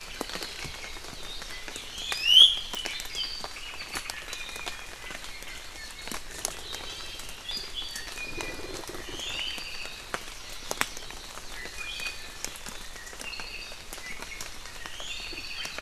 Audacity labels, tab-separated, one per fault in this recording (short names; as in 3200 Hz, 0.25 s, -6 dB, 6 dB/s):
2.750000	2.750000	pop